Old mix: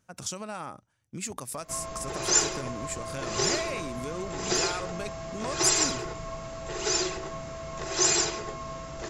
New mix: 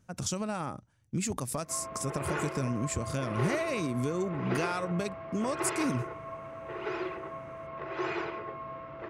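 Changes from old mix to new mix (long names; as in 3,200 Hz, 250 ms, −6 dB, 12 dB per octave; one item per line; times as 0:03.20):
speech: add low-shelf EQ 340 Hz +10 dB
background: add loudspeaker in its box 140–2,200 Hz, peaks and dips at 170 Hz −9 dB, 240 Hz −7 dB, 410 Hz −4 dB, 760 Hz −7 dB, 1,700 Hz −5 dB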